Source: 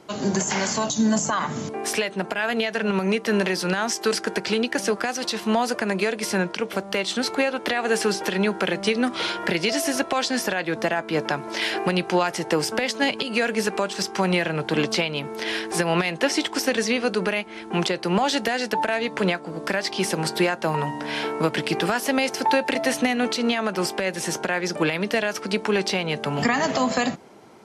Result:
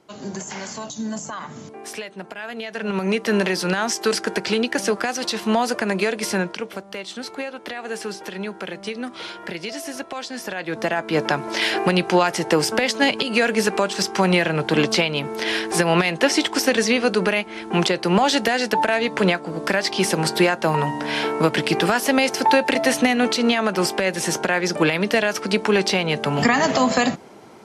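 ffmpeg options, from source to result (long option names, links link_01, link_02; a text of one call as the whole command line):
ffmpeg -i in.wav -af "volume=13.5dB,afade=type=in:start_time=2.6:duration=0.6:silence=0.316228,afade=type=out:start_time=6.27:duration=0.57:silence=0.334965,afade=type=in:start_time=10.38:duration=0.87:silence=0.266073" out.wav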